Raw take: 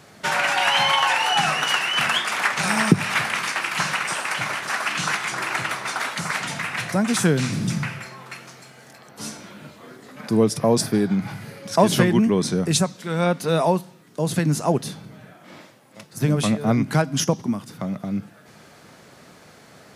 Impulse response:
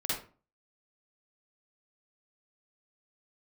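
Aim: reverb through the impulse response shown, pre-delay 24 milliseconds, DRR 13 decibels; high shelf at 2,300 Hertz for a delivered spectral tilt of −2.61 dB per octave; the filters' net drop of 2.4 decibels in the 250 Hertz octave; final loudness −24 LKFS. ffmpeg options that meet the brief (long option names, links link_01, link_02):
-filter_complex "[0:a]equalizer=frequency=250:width_type=o:gain=-3.5,highshelf=frequency=2300:gain=8,asplit=2[link_01][link_02];[1:a]atrim=start_sample=2205,adelay=24[link_03];[link_02][link_03]afir=irnorm=-1:irlink=0,volume=-18.5dB[link_04];[link_01][link_04]amix=inputs=2:normalize=0,volume=-5dB"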